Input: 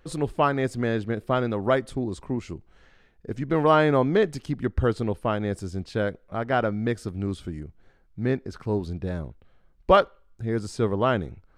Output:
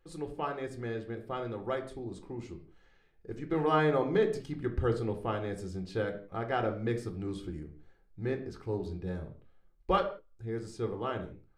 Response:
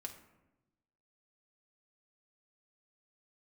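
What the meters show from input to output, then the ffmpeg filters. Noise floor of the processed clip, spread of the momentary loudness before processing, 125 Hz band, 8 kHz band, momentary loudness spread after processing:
-64 dBFS, 15 LU, -8.5 dB, n/a, 15 LU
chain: -filter_complex "[0:a]dynaudnorm=f=820:g=7:m=11.5dB[a];[1:a]atrim=start_sample=2205,afade=t=out:st=0.41:d=0.01,atrim=end_sample=18522,asetrate=83790,aresample=44100[b];[a][b]afir=irnorm=-1:irlink=0,volume=-3.5dB"

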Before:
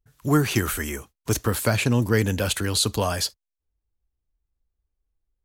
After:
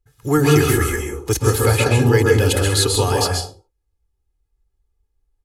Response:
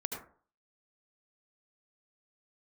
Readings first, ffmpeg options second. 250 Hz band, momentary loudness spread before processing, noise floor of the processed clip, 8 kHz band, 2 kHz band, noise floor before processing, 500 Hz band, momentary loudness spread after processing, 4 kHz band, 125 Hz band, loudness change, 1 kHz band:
+4.5 dB, 8 LU, -73 dBFS, +5.5 dB, +6.0 dB, -85 dBFS, +9.5 dB, 8 LU, +5.0 dB, +7.5 dB, +6.5 dB, +7.0 dB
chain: -filter_complex "[0:a]aecho=1:1:2.4:0.75[a];[1:a]atrim=start_sample=2205,afade=t=out:st=0.28:d=0.01,atrim=end_sample=12789,asetrate=25137,aresample=44100[b];[a][b]afir=irnorm=-1:irlink=0"

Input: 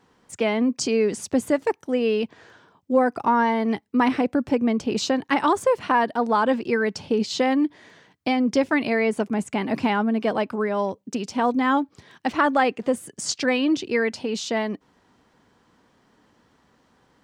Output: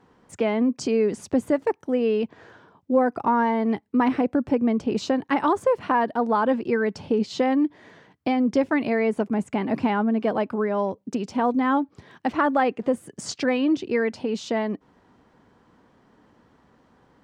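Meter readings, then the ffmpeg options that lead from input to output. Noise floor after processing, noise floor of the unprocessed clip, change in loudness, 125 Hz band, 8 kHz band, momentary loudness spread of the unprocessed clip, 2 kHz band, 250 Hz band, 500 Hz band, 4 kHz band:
-61 dBFS, -63 dBFS, -1.0 dB, +0.5 dB, n/a, 6 LU, -4.0 dB, 0.0 dB, -0.5 dB, -6.5 dB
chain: -filter_complex "[0:a]highshelf=f=2.4k:g=-11,asplit=2[a][b];[b]acompressor=threshold=-32dB:ratio=6,volume=-1.5dB[c];[a][c]amix=inputs=2:normalize=0,volume=-1.5dB"

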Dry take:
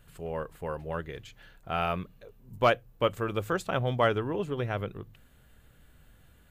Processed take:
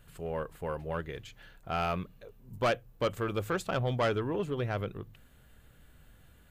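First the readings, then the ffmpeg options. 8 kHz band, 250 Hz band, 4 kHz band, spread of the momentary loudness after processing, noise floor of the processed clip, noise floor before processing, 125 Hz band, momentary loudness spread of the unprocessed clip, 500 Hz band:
+1.0 dB, -1.5 dB, -3.0 dB, 17 LU, -59 dBFS, -59 dBFS, -1.0 dB, 17 LU, -2.5 dB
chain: -af "asoftclip=type=tanh:threshold=-22dB"

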